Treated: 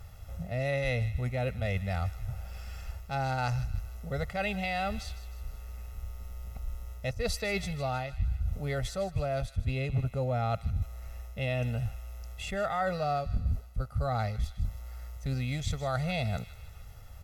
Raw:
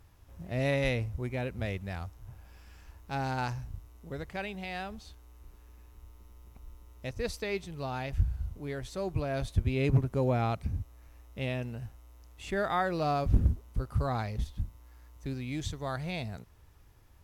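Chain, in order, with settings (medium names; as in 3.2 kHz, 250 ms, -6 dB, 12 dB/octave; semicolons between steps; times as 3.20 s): comb 1.5 ms, depth 91%; reverse; compression 6:1, threshold -35 dBFS, peak gain reduction 20 dB; reverse; feedback echo behind a high-pass 155 ms, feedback 48%, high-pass 1.7 kHz, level -13 dB; trim +7 dB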